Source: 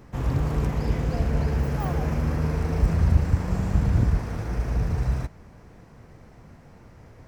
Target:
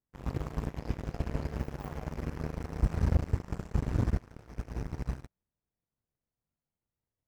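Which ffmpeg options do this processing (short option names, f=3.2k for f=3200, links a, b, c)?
-af "bandreject=f=95.33:t=h:w=4,bandreject=f=190.66:t=h:w=4,bandreject=f=285.99:t=h:w=4,bandreject=f=381.32:t=h:w=4,bandreject=f=476.65:t=h:w=4,bandreject=f=571.98:t=h:w=4,bandreject=f=667.31:t=h:w=4,bandreject=f=762.64:t=h:w=4,bandreject=f=857.97:t=h:w=4,bandreject=f=953.3:t=h:w=4,bandreject=f=1.04863k:t=h:w=4,bandreject=f=1.14396k:t=h:w=4,bandreject=f=1.23929k:t=h:w=4,bandreject=f=1.33462k:t=h:w=4,bandreject=f=1.42995k:t=h:w=4,bandreject=f=1.52528k:t=h:w=4,bandreject=f=1.62061k:t=h:w=4,bandreject=f=1.71594k:t=h:w=4,bandreject=f=1.81127k:t=h:w=4,bandreject=f=1.9066k:t=h:w=4,bandreject=f=2.00193k:t=h:w=4,bandreject=f=2.09726k:t=h:w=4,bandreject=f=2.19259k:t=h:w=4,bandreject=f=2.28792k:t=h:w=4,bandreject=f=2.38325k:t=h:w=4,bandreject=f=2.47858k:t=h:w=4,bandreject=f=2.57391k:t=h:w=4,bandreject=f=2.66924k:t=h:w=4,bandreject=f=2.76457k:t=h:w=4,aeval=exprs='0.398*(cos(1*acos(clip(val(0)/0.398,-1,1)))-cos(1*PI/2))+0.0562*(cos(7*acos(clip(val(0)/0.398,-1,1)))-cos(7*PI/2))':c=same,volume=-7dB"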